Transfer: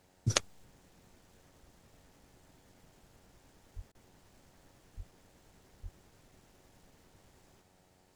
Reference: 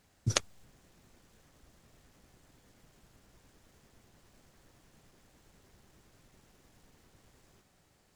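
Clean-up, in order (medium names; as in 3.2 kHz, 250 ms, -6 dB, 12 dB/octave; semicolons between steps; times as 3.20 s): de-hum 92.2 Hz, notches 10; 3.75–3.87 s: high-pass 140 Hz 24 dB/octave; 4.96–5.08 s: high-pass 140 Hz 24 dB/octave; 5.82–5.94 s: high-pass 140 Hz 24 dB/octave; interpolate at 3.92 s, 27 ms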